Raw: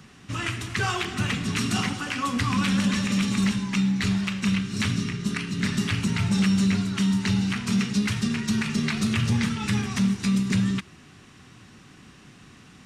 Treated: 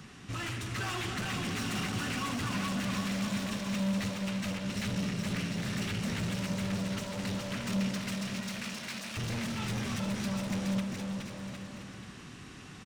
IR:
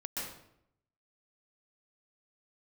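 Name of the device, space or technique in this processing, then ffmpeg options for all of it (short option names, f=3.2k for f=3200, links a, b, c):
saturation between pre-emphasis and de-emphasis: -filter_complex "[0:a]highshelf=f=6k:g=8,asoftclip=type=tanh:threshold=-33.5dB,highshelf=f=6k:g=-8,asettb=1/sr,asplit=3[a][b][c];[a]atrim=end=7.984[d];[b]atrim=start=7.98:end=9.17,asetpts=PTS-STARTPTS,afade=t=in:d=0.004:c=qsin,afade=t=out:st=1.186:d=0.004:c=qsin,highpass=f=1.2k:p=1[e];[c]atrim=start=9.166[f];[d][e]acrossfade=d=0.004:c1=hsin:c2=qsin[g];[g][f]acrossfade=d=0.004:c1=qsin:c2=hsin,aecho=1:1:420|756|1025|1240|1412:0.631|0.398|0.251|0.158|0.1"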